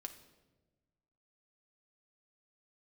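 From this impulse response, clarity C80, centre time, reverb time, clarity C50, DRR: 13.5 dB, 12 ms, 1.2 s, 11.0 dB, 4.5 dB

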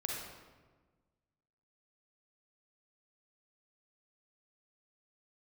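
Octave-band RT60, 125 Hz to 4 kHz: 1.8, 1.7, 1.5, 1.3, 1.1, 0.85 seconds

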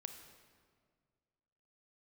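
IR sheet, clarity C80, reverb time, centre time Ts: 9.0 dB, 1.9 s, 27 ms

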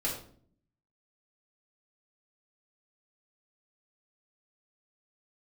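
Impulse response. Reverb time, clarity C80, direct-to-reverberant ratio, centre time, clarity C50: 0.55 s, 9.0 dB, −5.5 dB, 33 ms, 4.5 dB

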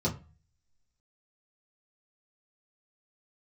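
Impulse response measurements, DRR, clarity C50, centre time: −6.0 dB, 14.0 dB, 14 ms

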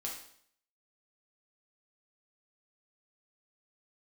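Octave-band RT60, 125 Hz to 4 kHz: 0.60, 0.65, 0.65, 0.60, 0.60, 0.60 seconds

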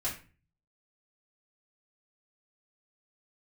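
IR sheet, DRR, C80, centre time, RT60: −6.5 dB, 13.0 dB, 24 ms, 0.35 s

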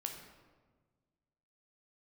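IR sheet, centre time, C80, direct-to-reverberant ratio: 34 ms, 7.5 dB, 2.5 dB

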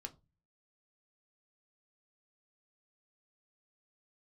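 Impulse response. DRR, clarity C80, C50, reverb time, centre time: 5.0 dB, 26.5 dB, 21.0 dB, 0.25 s, 6 ms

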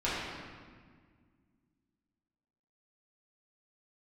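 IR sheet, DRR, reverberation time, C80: −10.5 dB, 1.7 s, 0.5 dB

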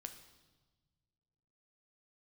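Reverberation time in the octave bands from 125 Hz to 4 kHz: 2.5, 2.1, 1.4, 1.2, 1.0, 1.2 seconds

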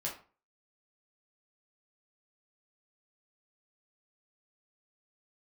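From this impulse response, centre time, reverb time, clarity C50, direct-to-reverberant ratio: 24 ms, 0.40 s, 8.0 dB, −4.0 dB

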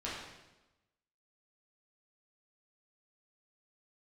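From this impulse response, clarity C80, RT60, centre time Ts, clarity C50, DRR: 3.5 dB, 1.0 s, 68 ms, 0.5 dB, −8.0 dB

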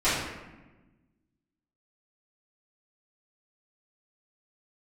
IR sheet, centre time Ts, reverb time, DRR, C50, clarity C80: 73 ms, 1.1 s, −15.5 dB, 0.0 dB, 3.5 dB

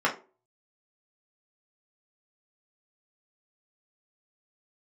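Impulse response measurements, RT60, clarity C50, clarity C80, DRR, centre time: 0.35 s, 12.5 dB, 19.0 dB, −4.0 dB, 16 ms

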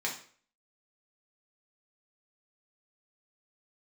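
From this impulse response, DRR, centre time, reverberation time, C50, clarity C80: −3.0 dB, 22 ms, 0.50 s, 8.0 dB, 12.5 dB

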